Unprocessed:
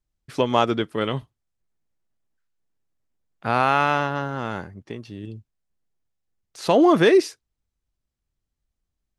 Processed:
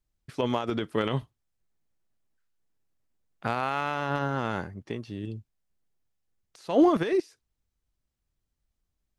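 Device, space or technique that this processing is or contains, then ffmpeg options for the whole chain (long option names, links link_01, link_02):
de-esser from a sidechain: -filter_complex "[0:a]asplit=2[link_01][link_02];[link_02]highpass=frequency=5600:width=0.5412,highpass=frequency=5600:width=1.3066,apad=whole_len=405039[link_03];[link_01][link_03]sidechaincompress=threshold=-54dB:ratio=8:attack=1.1:release=65"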